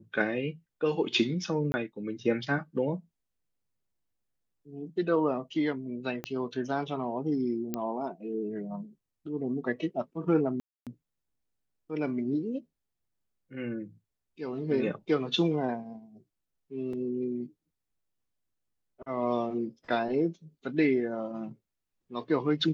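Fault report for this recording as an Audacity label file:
1.720000	1.740000	gap 20 ms
6.240000	6.240000	pop -20 dBFS
7.740000	7.740000	pop -18 dBFS
10.600000	10.870000	gap 0.267 s
16.930000	16.930000	gap 3.6 ms

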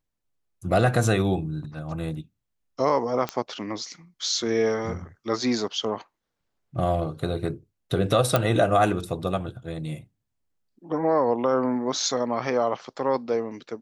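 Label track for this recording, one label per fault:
3.290000	3.290000	pop -13 dBFS
8.360000	8.360000	pop -6 dBFS

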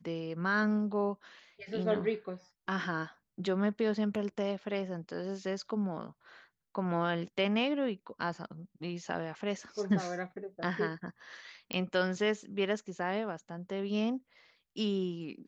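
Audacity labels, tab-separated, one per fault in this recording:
11.730000	11.730000	pop -17 dBFS

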